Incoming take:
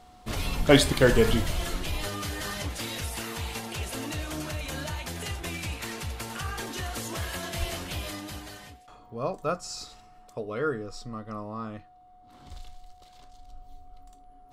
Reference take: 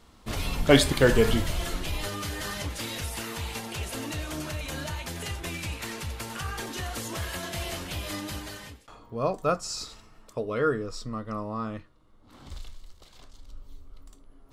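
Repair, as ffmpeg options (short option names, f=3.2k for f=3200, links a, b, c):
-filter_complex "[0:a]bandreject=f=730:w=30,asplit=3[a][b][c];[a]afade=t=out:st=7.59:d=0.02[d];[b]highpass=f=140:w=0.5412,highpass=f=140:w=1.3066,afade=t=in:st=7.59:d=0.02,afade=t=out:st=7.71:d=0.02[e];[c]afade=t=in:st=7.71:d=0.02[f];[d][e][f]amix=inputs=3:normalize=0,asetnsamples=n=441:p=0,asendcmd='8.1 volume volume 3.5dB',volume=0dB"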